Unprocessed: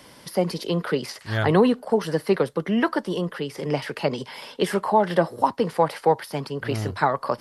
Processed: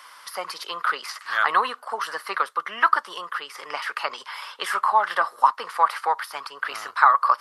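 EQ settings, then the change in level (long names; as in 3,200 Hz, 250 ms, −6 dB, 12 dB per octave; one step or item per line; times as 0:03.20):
high-pass with resonance 1,200 Hz, resonance Q 5.1
0.0 dB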